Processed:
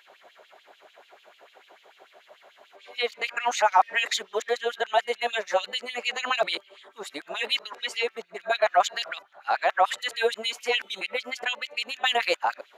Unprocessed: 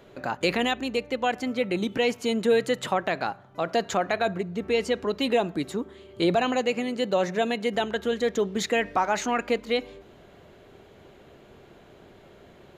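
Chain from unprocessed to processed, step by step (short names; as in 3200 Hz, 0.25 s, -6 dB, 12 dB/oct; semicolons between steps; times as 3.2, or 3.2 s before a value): whole clip reversed; LFO high-pass sine 6.8 Hz 630–3300 Hz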